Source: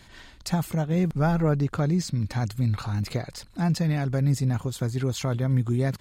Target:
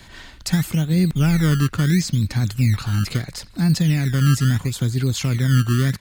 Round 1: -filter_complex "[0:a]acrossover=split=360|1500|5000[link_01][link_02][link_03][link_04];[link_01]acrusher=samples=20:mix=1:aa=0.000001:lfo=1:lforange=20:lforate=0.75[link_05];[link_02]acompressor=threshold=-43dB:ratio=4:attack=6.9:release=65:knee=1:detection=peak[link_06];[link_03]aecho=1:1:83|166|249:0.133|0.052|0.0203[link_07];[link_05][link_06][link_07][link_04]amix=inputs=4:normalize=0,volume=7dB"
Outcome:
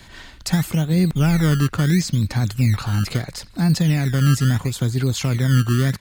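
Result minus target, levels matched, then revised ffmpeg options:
downward compressor: peak gain reduction −8 dB
-filter_complex "[0:a]acrossover=split=360|1500|5000[link_01][link_02][link_03][link_04];[link_01]acrusher=samples=20:mix=1:aa=0.000001:lfo=1:lforange=20:lforate=0.75[link_05];[link_02]acompressor=threshold=-53.5dB:ratio=4:attack=6.9:release=65:knee=1:detection=peak[link_06];[link_03]aecho=1:1:83|166|249:0.133|0.052|0.0203[link_07];[link_05][link_06][link_07][link_04]amix=inputs=4:normalize=0,volume=7dB"

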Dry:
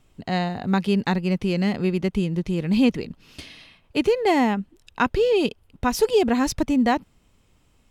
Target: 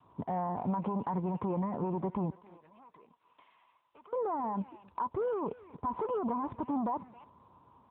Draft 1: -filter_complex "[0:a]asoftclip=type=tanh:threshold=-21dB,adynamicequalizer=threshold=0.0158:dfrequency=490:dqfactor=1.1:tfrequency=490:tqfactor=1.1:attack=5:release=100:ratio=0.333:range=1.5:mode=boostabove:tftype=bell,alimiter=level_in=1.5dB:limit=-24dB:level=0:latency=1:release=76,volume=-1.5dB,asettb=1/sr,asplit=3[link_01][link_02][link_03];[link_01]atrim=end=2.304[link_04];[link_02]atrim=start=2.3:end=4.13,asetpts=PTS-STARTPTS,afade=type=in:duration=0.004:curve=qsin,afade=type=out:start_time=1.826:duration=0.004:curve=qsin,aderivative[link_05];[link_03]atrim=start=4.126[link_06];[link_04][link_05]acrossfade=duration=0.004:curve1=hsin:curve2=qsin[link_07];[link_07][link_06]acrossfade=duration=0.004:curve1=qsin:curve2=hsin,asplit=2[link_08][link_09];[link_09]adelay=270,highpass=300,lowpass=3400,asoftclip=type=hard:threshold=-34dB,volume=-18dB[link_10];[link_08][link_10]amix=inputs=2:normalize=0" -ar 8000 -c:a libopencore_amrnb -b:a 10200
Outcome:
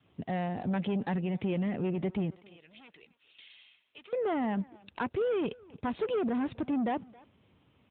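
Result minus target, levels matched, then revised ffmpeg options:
1,000 Hz band −6.0 dB
-filter_complex "[0:a]asoftclip=type=tanh:threshold=-21dB,adynamicequalizer=threshold=0.0158:dfrequency=490:dqfactor=1.1:tfrequency=490:tqfactor=1.1:attack=5:release=100:ratio=0.333:range=1.5:mode=boostabove:tftype=bell,lowpass=frequency=1000:width_type=q:width=11,alimiter=level_in=1.5dB:limit=-24dB:level=0:latency=1:release=76,volume=-1.5dB,asettb=1/sr,asplit=3[link_01][link_02][link_03];[link_01]atrim=end=2.304[link_04];[link_02]atrim=start=2.3:end=4.13,asetpts=PTS-STARTPTS,afade=type=in:duration=0.004:curve=qsin,afade=type=out:start_time=1.826:duration=0.004:curve=qsin,aderivative[link_05];[link_03]atrim=start=4.126[link_06];[link_04][link_05]acrossfade=duration=0.004:curve1=hsin:curve2=qsin[link_07];[link_07][link_06]acrossfade=duration=0.004:curve1=qsin:curve2=hsin,asplit=2[link_08][link_09];[link_09]adelay=270,highpass=300,lowpass=3400,asoftclip=type=hard:threshold=-34dB,volume=-18dB[link_10];[link_08][link_10]amix=inputs=2:normalize=0" -ar 8000 -c:a libopencore_amrnb -b:a 10200

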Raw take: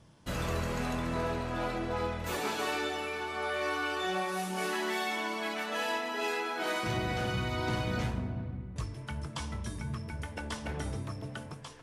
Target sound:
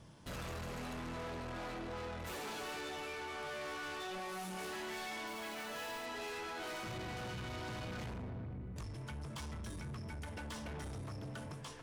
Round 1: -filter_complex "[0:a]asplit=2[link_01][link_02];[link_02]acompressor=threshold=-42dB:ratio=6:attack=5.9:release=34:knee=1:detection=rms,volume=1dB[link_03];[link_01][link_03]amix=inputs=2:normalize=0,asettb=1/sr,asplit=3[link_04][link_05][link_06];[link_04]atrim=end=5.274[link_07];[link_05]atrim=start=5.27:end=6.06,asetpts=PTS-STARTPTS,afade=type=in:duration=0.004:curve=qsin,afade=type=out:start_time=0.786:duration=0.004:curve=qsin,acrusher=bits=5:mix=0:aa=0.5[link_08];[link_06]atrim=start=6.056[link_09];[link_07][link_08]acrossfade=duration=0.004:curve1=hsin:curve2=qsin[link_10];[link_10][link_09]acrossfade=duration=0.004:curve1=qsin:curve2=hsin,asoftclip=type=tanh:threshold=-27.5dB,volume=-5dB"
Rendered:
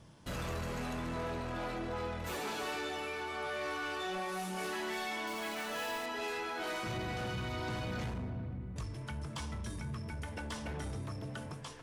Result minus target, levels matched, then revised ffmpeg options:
soft clipping: distortion −7 dB
-filter_complex "[0:a]asplit=2[link_01][link_02];[link_02]acompressor=threshold=-42dB:ratio=6:attack=5.9:release=34:knee=1:detection=rms,volume=1dB[link_03];[link_01][link_03]amix=inputs=2:normalize=0,asettb=1/sr,asplit=3[link_04][link_05][link_06];[link_04]atrim=end=5.274[link_07];[link_05]atrim=start=5.27:end=6.06,asetpts=PTS-STARTPTS,afade=type=in:duration=0.004:curve=qsin,afade=type=out:start_time=0.786:duration=0.004:curve=qsin,acrusher=bits=5:mix=0:aa=0.5[link_08];[link_06]atrim=start=6.056[link_09];[link_07][link_08]acrossfade=duration=0.004:curve1=hsin:curve2=qsin[link_10];[link_10][link_09]acrossfade=duration=0.004:curve1=qsin:curve2=hsin,asoftclip=type=tanh:threshold=-36dB,volume=-5dB"

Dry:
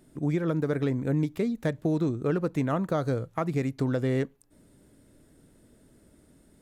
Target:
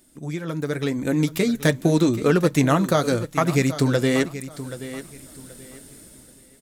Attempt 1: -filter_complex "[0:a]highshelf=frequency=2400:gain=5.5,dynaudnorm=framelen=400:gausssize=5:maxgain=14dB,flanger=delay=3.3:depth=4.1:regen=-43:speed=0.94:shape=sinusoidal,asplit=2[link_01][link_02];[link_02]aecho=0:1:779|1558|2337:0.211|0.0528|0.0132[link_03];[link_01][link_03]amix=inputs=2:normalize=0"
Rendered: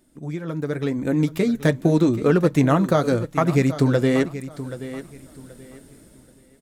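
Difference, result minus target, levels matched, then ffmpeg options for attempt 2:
4,000 Hz band −6.5 dB
-filter_complex "[0:a]highshelf=frequency=2400:gain=15.5,dynaudnorm=framelen=400:gausssize=5:maxgain=14dB,flanger=delay=3.3:depth=4.1:regen=-43:speed=0.94:shape=sinusoidal,asplit=2[link_01][link_02];[link_02]aecho=0:1:779|1558|2337:0.211|0.0528|0.0132[link_03];[link_01][link_03]amix=inputs=2:normalize=0"

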